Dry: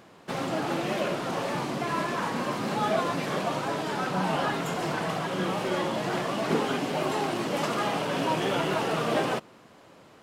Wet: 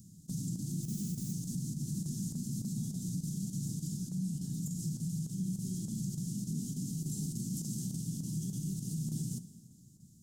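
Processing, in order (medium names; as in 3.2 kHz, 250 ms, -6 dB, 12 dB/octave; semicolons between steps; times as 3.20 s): elliptic band-stop 180–6600 Hz, stop band 50 dB; gain riding within 4 dB 0.5 s; peak limiter -33 dBFS, peak gain reduction 9 dB; 0.82–1.32 s: added noise violet -56 dBFS; square tremolo 3.4 Hz, depth 60%, duty 90%; plate-style reverb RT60 2.2 s, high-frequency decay 0.75×, DRR 12 dB; trim +4 dB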